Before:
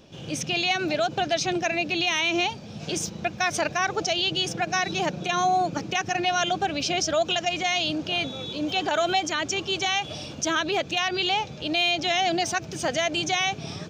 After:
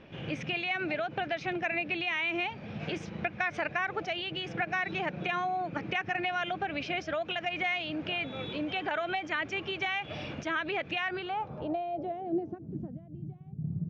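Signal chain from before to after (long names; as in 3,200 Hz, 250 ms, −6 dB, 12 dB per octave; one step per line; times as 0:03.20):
0:12.31–0:12.94: dynamic equaliser 1,400 Hz, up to +4 dB, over −38 dBFS, Q 0.73
downward compressor, threshold −30 dBFS, peak gain reduction 11.5 dB
low-pass filter sweep 2,100 Hz → 160 Hz, 0:10.98–0:13.09
level −1 dB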